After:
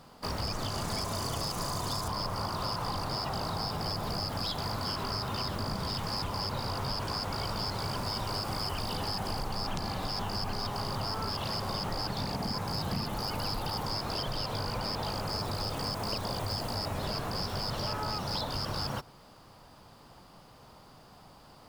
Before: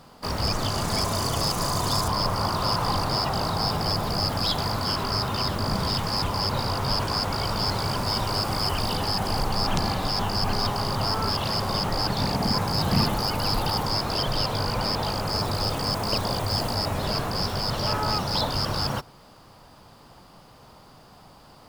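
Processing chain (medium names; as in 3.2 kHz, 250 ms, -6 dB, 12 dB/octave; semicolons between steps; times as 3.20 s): compression, threshold -26 dBFS, peak gain reduction 9 dB; trim -4 dB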